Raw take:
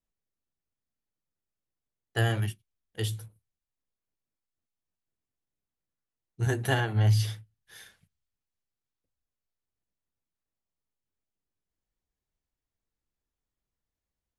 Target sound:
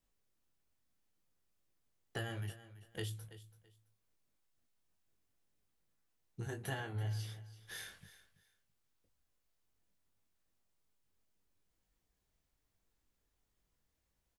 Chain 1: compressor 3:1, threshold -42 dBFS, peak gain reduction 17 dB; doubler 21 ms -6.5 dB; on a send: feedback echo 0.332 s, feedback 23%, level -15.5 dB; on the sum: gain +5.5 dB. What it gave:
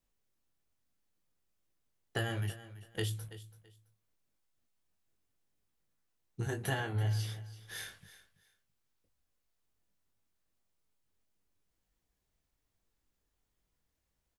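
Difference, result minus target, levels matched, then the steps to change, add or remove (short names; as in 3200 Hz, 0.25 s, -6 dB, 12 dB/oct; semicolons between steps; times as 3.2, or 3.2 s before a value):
compressor: peak gain reduction -6.5 dB
change: compressor 3:1, threshold -51.5 dBFS, peak gain reduction 23 dB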